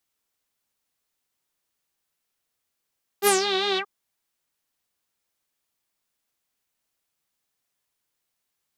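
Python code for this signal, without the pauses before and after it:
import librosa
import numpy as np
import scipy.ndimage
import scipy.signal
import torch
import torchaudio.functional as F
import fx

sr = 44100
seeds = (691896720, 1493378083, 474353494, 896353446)

y = fx.sub_patch_vibrato(sr, seeds[0], note=67, wave='saw', wave2='saw', interval_st=0, detune_cents=26, level2_db=-9.0, sub_db=-25, noise_db=-17.0, kind='lowpass', cutoff_hz=940.0, q=6.3, env_oct=4.0, env_decay_s=0.24, env_sustain_pct=50, attack_ms=52.0, decay_s=0.12, sustain_db=-10, release_s=0.07, note_s=0.56, lfo_hz=5.1, vibrato_cents=75)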